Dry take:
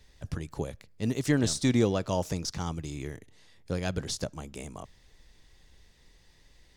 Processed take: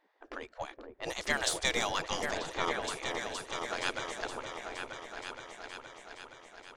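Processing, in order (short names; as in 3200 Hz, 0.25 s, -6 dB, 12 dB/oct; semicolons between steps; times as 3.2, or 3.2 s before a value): notch 2600 Hz, Q 24; in parallel at -5 dB: backlash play -37 dBFS; on the sum: low-pass opened by the level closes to 1100 Hz, open at -18.5 dBFS; bell 170 Hz +14.5 dB 0.95 oct; spectral gate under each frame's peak -25 dB weak; on a send: repeats that get brighter 0.469 s, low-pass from 750 Hz, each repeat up 2 oct, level -3 dB; on the sum: gain +3 dB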